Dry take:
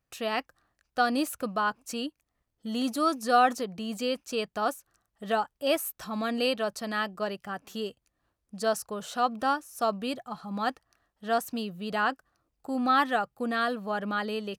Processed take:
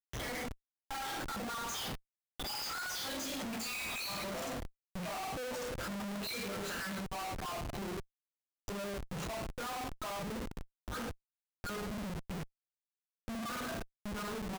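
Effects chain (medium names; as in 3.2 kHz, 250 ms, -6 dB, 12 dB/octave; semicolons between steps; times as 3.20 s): random holes in the spectrogram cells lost 71%; Doppler pass-by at 3.62 s, 37 m/s, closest 17 m; doubling 45 ms -11.5 dB; resampled via 16 kHz; compressor with a negative ratio -41 dBFS, ratio -0.5; plate-style reverb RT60 0.52 s, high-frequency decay 0.95×, DRR -8 dB; Schmitt trigger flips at -51 dBFS; trim +2 dB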